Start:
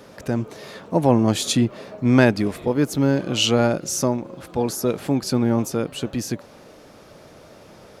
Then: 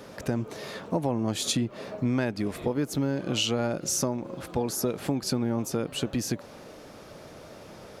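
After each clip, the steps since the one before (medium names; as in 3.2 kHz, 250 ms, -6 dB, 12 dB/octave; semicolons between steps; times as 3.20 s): compression 6:1, threshold -24 dBFS, peak gain reduction 13.5 dB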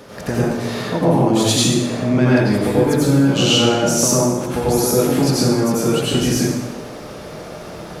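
plate-style reverb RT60 1.2 s, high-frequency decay 0.75×, pre-delay 75 ms, DRR -8 dB; trim +4.5 dB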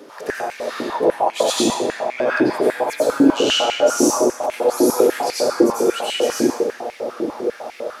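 bucket-brigade echo 311 ms, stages 2048, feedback 82%, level -5.5 dB; step-sequenced high-pass 10 Hz 320–2200 Hz; trim -5 dB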